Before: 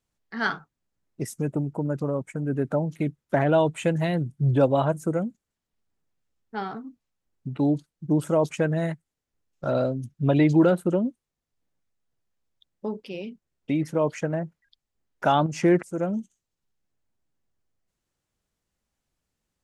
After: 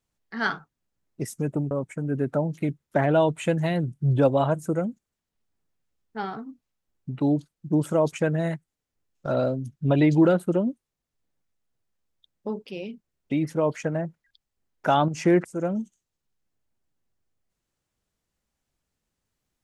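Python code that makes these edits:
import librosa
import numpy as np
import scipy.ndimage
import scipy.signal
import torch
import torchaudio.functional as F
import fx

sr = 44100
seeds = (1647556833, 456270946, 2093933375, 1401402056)

y = fx.edit(x, sr, fx.cut(start_s=1.71, length_s=0.38), tone=tone)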